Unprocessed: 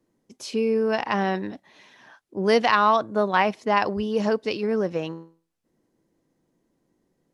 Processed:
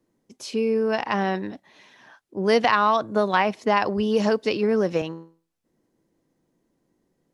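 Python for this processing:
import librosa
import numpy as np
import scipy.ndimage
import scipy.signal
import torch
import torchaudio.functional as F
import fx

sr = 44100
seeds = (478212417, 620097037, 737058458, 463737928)

y = fx.band_squash(x, sr, depth_pct=70, at=(2.64, 5.02))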